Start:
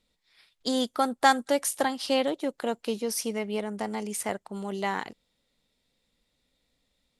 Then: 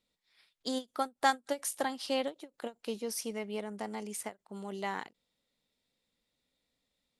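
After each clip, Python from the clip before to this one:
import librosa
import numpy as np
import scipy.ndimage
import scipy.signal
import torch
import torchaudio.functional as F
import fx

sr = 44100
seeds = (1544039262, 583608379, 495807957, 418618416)

y = fx.low_shelf(x, sr, hz=69.0, db=-10.0)
y = fx.end_taper(y, sr, db_per_s=380.0)
y = F.gain(torch.from_numpy(y), -6.5).numpy()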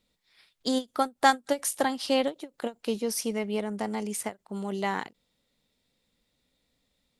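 y = fx.low_shelf(x, sr, hz=220.0, db=6.0)
y = F.gain(torch.from_numpy(y), 6.0).numpy()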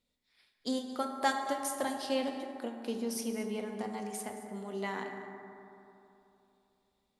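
y = x + 10.0 ** (-16.0 / 20.0) * np.pad(x, (int(223 * sr / 1000.0), 0))[:len(x)]
y = fx.rev_fdn(y, sr, rt60_s=3.0, lf_ratio=1.0, hf_ratio=0.35, size_ms=24.0, drr_db=3.0)
y = F.gain(torch.from_numpy(y), -8.5).numpy()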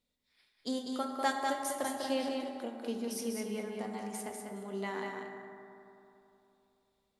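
y = x + 10.0 ** (-5.0 / 20.0) * np.pad(x, (int(197 * sr / 1000.0), 0))[:len(x)]
y = F.gain(torch.from_numpy(y), -2.0).numpy()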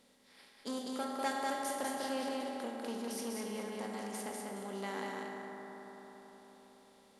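y = fx.bin_compress(x, sr, power=0.6)
y = fx.transformer_sat(y, sr, knee_hz=1100.0)
y = F.gain(torch.from_numpy(y), -5.0).numpy()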